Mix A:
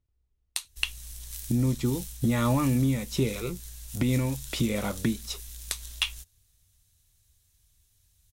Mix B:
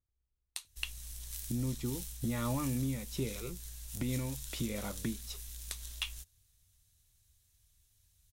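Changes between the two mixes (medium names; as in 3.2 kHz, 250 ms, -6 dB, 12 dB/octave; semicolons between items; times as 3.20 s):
speech -10.0 dB; background -3.5 dB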